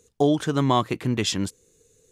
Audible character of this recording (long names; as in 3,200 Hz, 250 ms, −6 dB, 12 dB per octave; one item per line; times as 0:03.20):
background noise floor −65 dBFS
spectral slope −5.5 dB per octave